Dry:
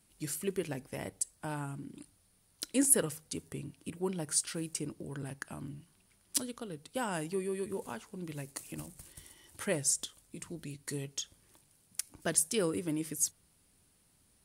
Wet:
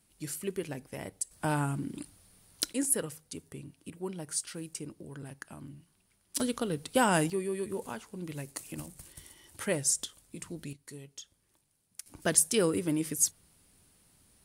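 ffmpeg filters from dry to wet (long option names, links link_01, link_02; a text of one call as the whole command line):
ffmpeg -i in.wav -af "asetnsamples=nb_out_samples=441:pad=0,asendcmd='1.31 volume volume 8.5dB;2.73 volume volume -3dB;6.4 volume volume 10dB;7.3 volume volume 2dB;10.73 volume volume -8dB;12.06 volume volume 4.5dB',volume=-0.5dB" out.wav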